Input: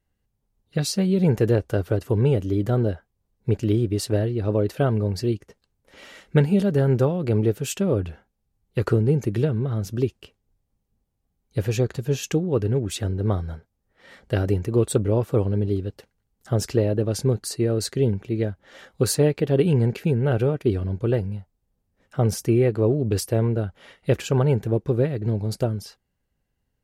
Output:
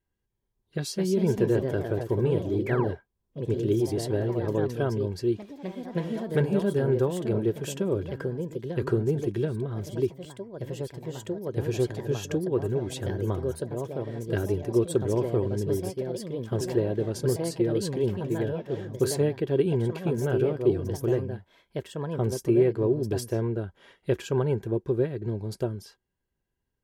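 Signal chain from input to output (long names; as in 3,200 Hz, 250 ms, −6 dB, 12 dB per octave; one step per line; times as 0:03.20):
sound drawn into the spectrogram fall, 0:02.66–0:02.95, 400–2,400 Hz −31 dBFS
delay with pitch and tempo change per echo 298 ms, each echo +2 semitones, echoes 3, each echo −6 dB
hollow resonant body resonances 370/980/1,600/3,300 Hz, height 9 dB, ringing for 40 ms
level −8 dB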